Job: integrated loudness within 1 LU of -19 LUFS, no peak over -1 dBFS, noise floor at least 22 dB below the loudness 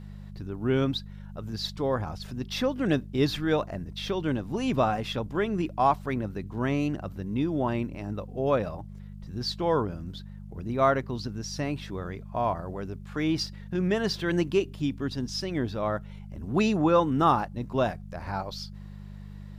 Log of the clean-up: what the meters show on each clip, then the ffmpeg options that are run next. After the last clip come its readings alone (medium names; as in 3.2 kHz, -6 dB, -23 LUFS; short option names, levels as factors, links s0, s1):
hum 50 Hz; highest harmonic 200 Hz; hum level -39 dBFS; loudness -28.5 LUFS; peak level -10.0 dBFS; loudness target -19.0 LUFS
-> -af "bandreject=f=50:t=h:w=4,bandreject=f=100:t=h:w=4,bandreject=f=150:t=h:w=4,bandreject=f=200:t=h:w=4"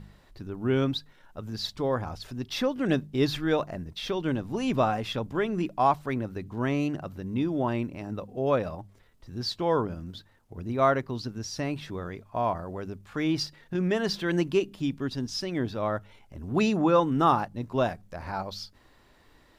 hum not found; loudness -29.0 LUFS; peak level -10.0 dBFS; loudness target -19.0 LUFS
-> -af "volume=3.16,alimiter=limit=0.891:level=0:latency=1"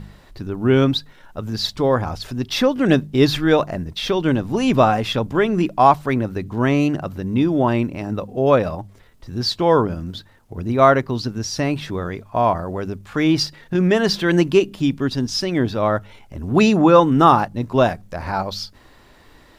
loudness -19.0 LUFS; peak level -1.0 dBFS; noise floor -49 dBFS